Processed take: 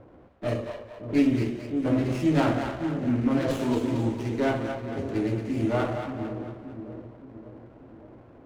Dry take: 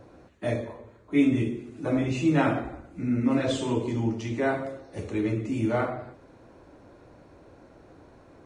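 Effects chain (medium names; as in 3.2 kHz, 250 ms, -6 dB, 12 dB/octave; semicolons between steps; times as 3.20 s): two-band feedback delay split 520 Hz, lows 575 ms, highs 225 ms, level -7 dB; level-controlled noise filter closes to 1.4 kHz, open at -23 dBFS; sliding maximum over 9 samples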